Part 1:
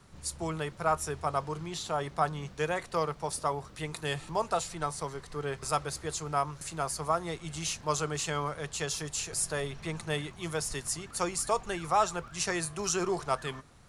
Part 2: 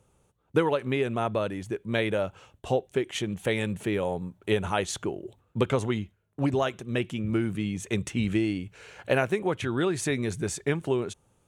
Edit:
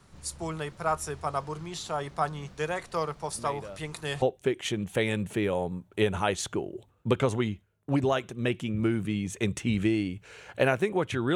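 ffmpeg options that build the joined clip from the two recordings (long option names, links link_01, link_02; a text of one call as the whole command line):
ffmpeg -i cue0.wav -i cue1.wav -filter_complex "[1:a]asplit=2[link_01][link_02];[0:a]apad=whole_dur=11.35,atrim=end=11.35,atrim=end=4.222[link_03];[link_02]atrim=start=2.718:end=9.85[link_04];[link_01]atrim=start=1.79:end=2.72,asetpts=PTS-STARTPTS,volume=-15dB,afade=type=in:duration=0.004:curve=hsin,afade=type=out:start_time=0.926:duration=0.004:curve=hsin,adelay=145089S[link_05];[link_03][link_04]acrossfade=duration=0.004:curve1=hsin:curve2=hsin[link_06];[link_06][link_05]amix=inputs=2:normalize=0" out.wav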